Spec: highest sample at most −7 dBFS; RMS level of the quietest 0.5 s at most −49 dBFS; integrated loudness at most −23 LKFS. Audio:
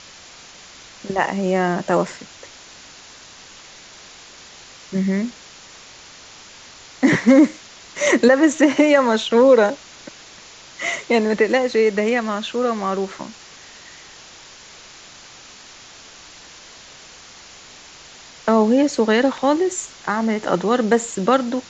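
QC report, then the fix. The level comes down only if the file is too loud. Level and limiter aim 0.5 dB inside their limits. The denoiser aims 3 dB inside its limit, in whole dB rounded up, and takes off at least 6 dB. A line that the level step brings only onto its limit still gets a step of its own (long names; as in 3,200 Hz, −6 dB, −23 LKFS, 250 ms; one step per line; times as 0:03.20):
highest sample −2.5 dBFS: out of spec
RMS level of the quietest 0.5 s −43 dBFS: out of spec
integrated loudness −18.0 LKFS: out of spec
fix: broadband denoise 6 dB, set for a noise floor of −43 dBFS
level −5.5 dB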